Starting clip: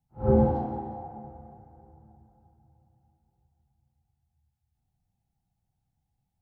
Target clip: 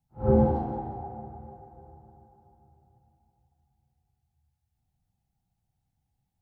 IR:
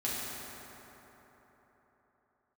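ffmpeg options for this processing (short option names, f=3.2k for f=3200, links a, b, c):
-filter_complex "[0:a]asplit=2[a][b];[1:a]atrim=start_sample=2205,adelay=130[c];[b][c]afir=irnorm=-1:irlink=0,volume=-21dB[d];[a][d]amix=inputs=2:normalize=0"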